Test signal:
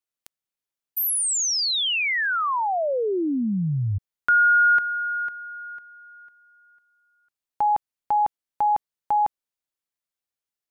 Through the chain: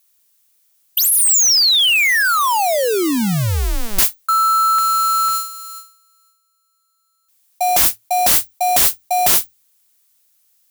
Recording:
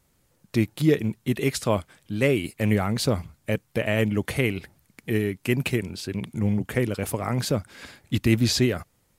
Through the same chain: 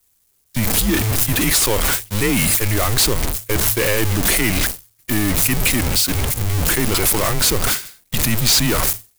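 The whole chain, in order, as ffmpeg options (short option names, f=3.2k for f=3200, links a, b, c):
-filter_complex "[0:a]aeval=exprs='val(0)+0.5*0.0841*sgn(val(0))':c=same,agate=range=-60dB:threshold=-23dB:ratio=16:release=424:detection=peak,areverse,acompressor=threshold=-34dB:ratio=4:attack=12:release=41:detection=peak,areverse,crystalizer=i=4:c=0,asplit=2[a][b];[b]aeval=exprs='0.376*sin(PI/2*3.98*val(0)/0.376)':c=same,volume=-6dB[c];[a][c]amix=inputs=2:normalize=0,afreqshift=-110,volume=1.5dB"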